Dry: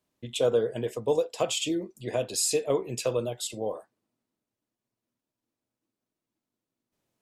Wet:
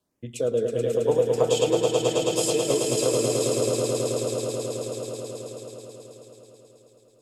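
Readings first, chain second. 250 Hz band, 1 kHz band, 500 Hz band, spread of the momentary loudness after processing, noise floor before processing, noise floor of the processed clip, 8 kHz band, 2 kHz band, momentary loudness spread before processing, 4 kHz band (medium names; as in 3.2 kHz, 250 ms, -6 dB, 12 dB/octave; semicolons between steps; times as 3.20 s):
+6.0 dB, +5.0 dB, +6.5 dB, 15 LU, under -85 dBFS, -58 dBFS, +4.5 dB, +3.5 dB, 8 LU, +3.5 dB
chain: rotary cabinet horn 0.6 Hz; LFO notch sine 1 Hz 820–4300 Hz; echo with a slow build-up 108 ms, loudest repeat 5, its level -5 dB; in parallel at -0.5 dB: compression, threshold -35 dBFS, peak gain reduction 17 dB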